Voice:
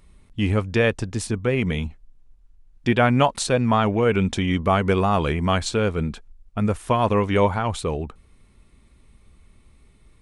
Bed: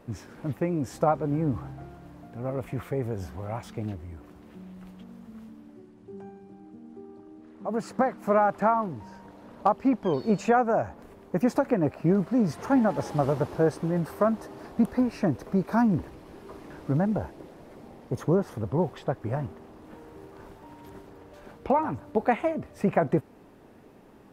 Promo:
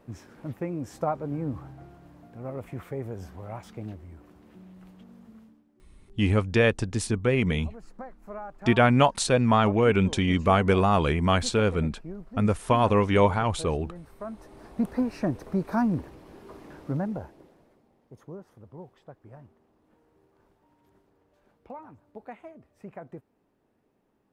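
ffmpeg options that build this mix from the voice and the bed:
ffmpeg -i stem1.wav -i stem2.wav -filter_complex "[0:a]adelay=5800,volume=-1.5dB[link_01];[1:a]volume=10.5dB,afade=type=out:start_time=5.29:duration=0.36:silence=0.237137,afade=type=in:start_time=14.19:duration=0.78:silence=0.177828,afade=type=out:start_time=16.68:duration=1.15:silence=0.149624[link_02];[link_01][link_02]amix=inputs=2:normalize=0" out.wav

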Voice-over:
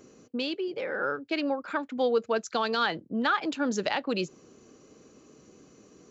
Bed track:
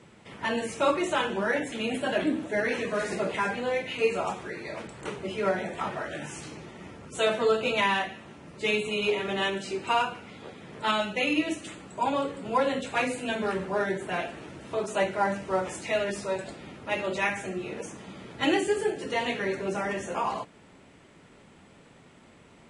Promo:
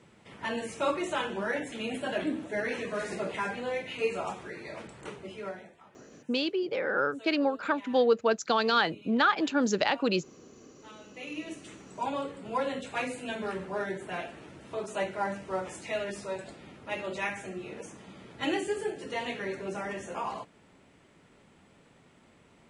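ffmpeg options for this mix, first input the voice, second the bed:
ffmpeg -i stem1.wav -i stem2.wav -filter_complex "[0:a]adelay=5950,volume=2dB[link_01];[1:a]volume=15dB,afade=type=out:start_time=4.91:duration=0.88:silence=0.0944061,afade=type=in:start_time=11.01:duration=0.92:silence=0.105925[link_02];[link_01][link_02]amix=inputs=2:normalize=0" out.wav

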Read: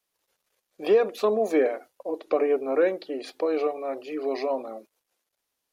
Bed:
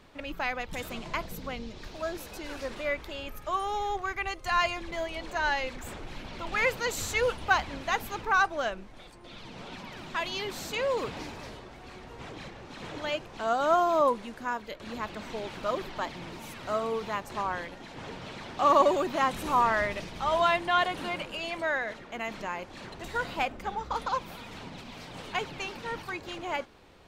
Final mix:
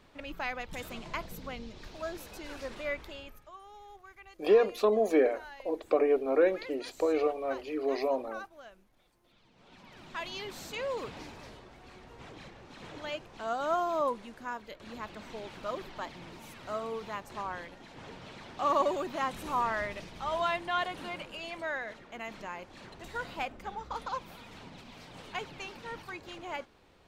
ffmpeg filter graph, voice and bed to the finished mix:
ffmpeg -i stem1.wav -i stem2.wav -filter_complex "[0:a]adelay=3600,volume=-2.5dB[link_01];[1:a]volume=10dB,afade=type=out:start_time=3.03:duration=0.48:silence=0.158489,afade=type=in:start_time=9.56:duration=0.68:silence=0.199526[link_02];[link_01][link_02]amix=inputs=2:normalize=0" out.wav

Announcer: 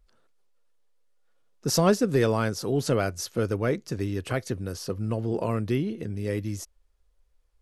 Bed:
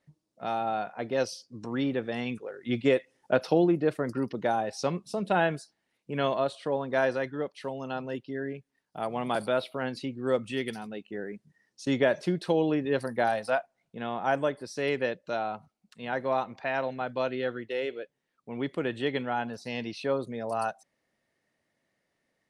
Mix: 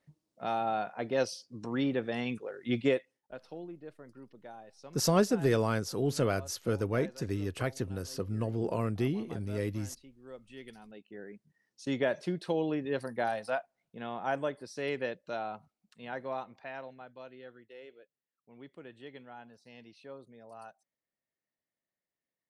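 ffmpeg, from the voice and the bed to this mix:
ffmpeg -i stem1.wav -i stem2.wav -filter_complex "[0:a]adelay=3300,volume=-4.5dB[link_01];[1:a]volume=14dB,afade=type=out:start_time=2.79:duration=0.42:silence=0.105925,afade=type=in:start_time=10.38:duration=1.45:silence=0.16788,afade=type=out:start_time=15.69:duration=1.46:silence=0.223872[link_02];[link_01][link_02]amix=inputs=2:normalize=0" out.wav

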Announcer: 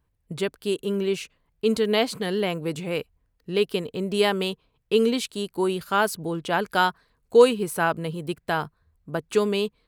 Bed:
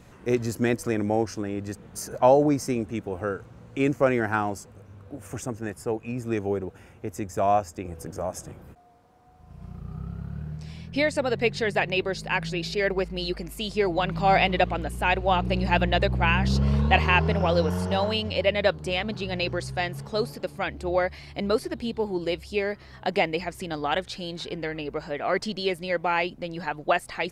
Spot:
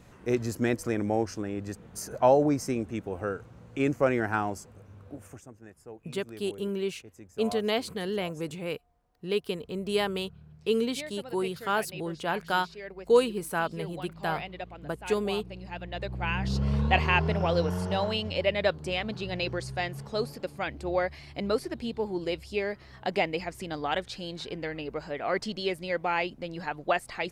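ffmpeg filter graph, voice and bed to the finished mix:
ffmpeg -i stem1.wav -i stem2.wav -filter_complex "[0:a]adelay=5750,volume=-6dB[link_01];[1:a]volume=10.5dB,afade=type=out:start_time=5.12:duration=0.29:silence=0.199526,afade=type=in:start_time=15.82:duration=1:silence=0.211349[link_02];[link_01][link_02]amix=inputs=2:normalize=0" out.wav

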